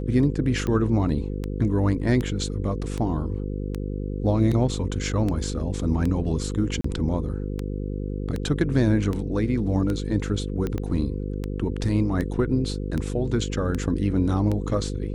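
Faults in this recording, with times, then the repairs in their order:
buzz 50 Hz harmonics 10 -29 dBFS
tick 78 rpm -16 dBFS
6.81–6.84 s: dropout 34 ms
10.78 s: pop -18 dBFS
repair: de-click; de-hum 50 Hz, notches 10; interpolate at 6.81 s, 34 ms

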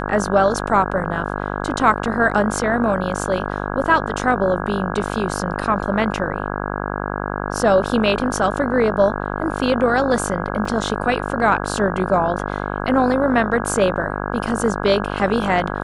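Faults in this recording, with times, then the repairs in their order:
buzz 50 Hz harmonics 33 -25 dBFS
10.65 s: dropout 4.1 ms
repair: de-hum 50 Hz, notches 33; interpolate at 10.65 s, 4.1 ms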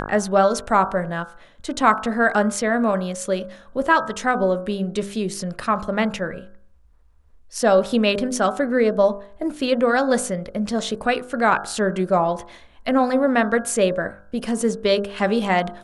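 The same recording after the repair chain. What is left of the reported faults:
nothing left

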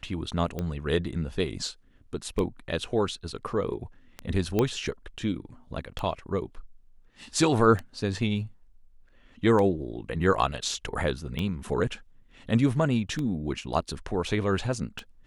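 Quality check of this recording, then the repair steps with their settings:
tick 33 1/3 rpm -18 dBFS
4.59 s: pop -12 dBFS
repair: de-click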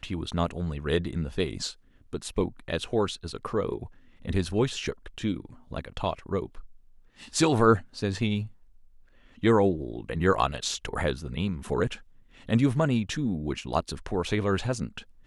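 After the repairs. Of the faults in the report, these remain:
4.59 s: pop

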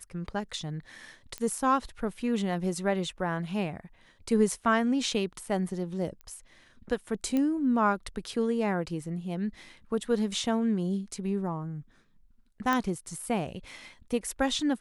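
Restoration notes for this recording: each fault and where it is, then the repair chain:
1.38 s: pop -20 dBFS
6.21 s: pop -30 dBFS
7.37 s: pop -17 dBFS
12.73 s: pop -14 dBFS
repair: de-click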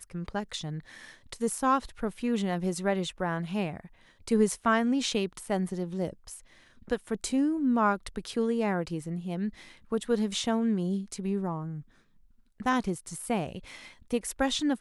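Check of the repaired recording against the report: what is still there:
12.73 s: pop

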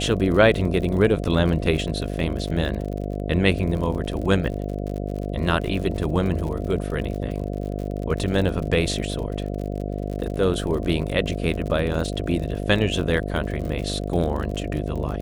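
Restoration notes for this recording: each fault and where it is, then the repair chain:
buzz 50 Hz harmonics 14 -28 dBFS
crackle 57 per s -30 dBFS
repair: de-click; de-hum 50 Hz, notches 14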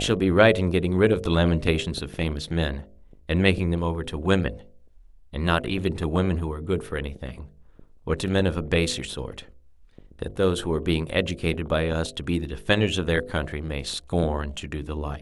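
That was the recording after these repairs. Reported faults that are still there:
nothing left

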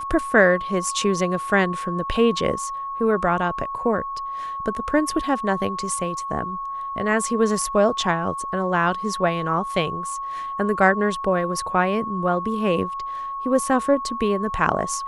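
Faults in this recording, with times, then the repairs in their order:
whine 1.1 kHz -27 dBFS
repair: band-stop 1.1 kHz, Q 30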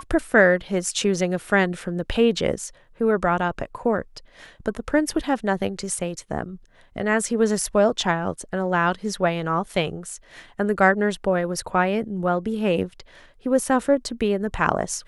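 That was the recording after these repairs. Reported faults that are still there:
nothing left

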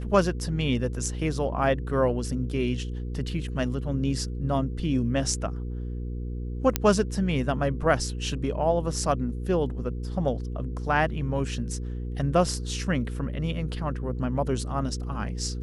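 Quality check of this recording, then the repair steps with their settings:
hum 60 Hz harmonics 8 -32 dBFS
6.76 s: pop -5 dBFS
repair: de-click; de-hum 60 Hz, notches 8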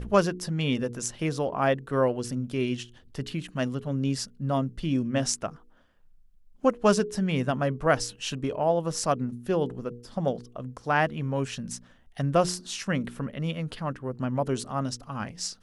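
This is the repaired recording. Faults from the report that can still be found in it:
nothing left

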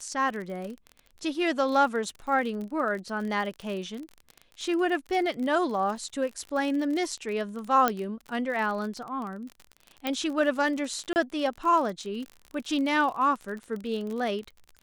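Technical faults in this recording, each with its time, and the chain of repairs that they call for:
crackle 39 per s -33 dBFS
7.88 s: pop -9 dBFS
10.07 s: pop -14 dBFS
11.13–11.16 s: dropout 29 ms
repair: de-click; interpolate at 11.13 s, 29 ms

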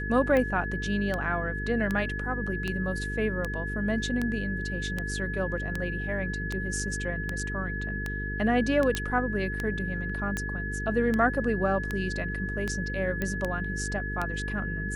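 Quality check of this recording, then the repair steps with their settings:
buzz 50 Hz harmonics 9 -34 dBFS
tick 78 rpm -16 dBFS
whine 1.7 kHz -34 dBFS
8.95 s: pop -13 dBFS
13.22 s: pop -16 dBFS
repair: de-click; de-hum 50 Hz, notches 9; band-stop 1.7 kHz, Q 30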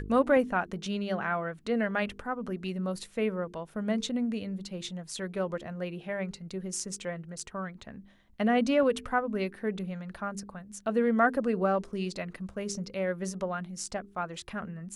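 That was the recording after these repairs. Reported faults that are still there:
nothing left

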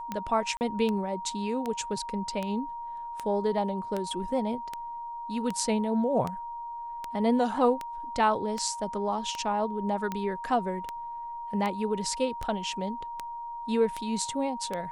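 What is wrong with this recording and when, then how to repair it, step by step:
tick 78 rpm -18 dBFS
whine 940 Hz -35 dBFS
0.57–0.61 s: dropout 39 ms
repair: de-click; band-stop 940 Hz, Q 30; interpolate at 0.57 s, 39 ms

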